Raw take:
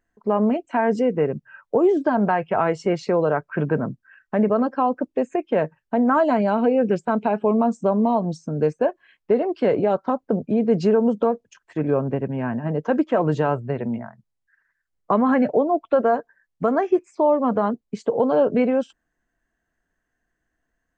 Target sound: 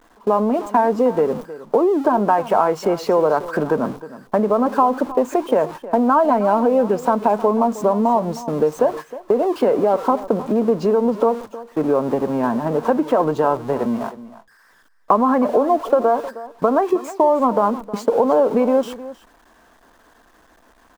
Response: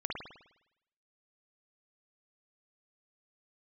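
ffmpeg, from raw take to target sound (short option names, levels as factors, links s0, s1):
-af "aeval=exprs='val(0)+0.5*0.0266*sgn(val(0))':c=same,agate=range=0.126:threshold=0.0282:ratio=16:detection=peak,equalizer=f=1100:t=o:w=0.77:g=2,acompressor=threshold=0.126:ratio=6,equalizer=f=125:t=o:w=1:g=-7,equalizer=f=250:t=o:w=1:g=5,equalizer=f=500:t=o:w=1:g=5,equalizer=f=1000:t=o:w=1:g=10,equalizer=f=2000:t=o:w=1:g=-3,aecho=1:1:313:0.158,volume=0.891"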